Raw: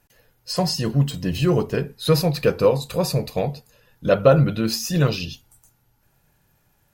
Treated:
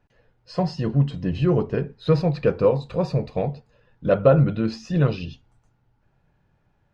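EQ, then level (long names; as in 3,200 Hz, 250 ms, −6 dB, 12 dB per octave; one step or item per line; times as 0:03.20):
high-frequency loss of the air 57 metres
head-to-tape spacing loss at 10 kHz 24 dB
0.0 dB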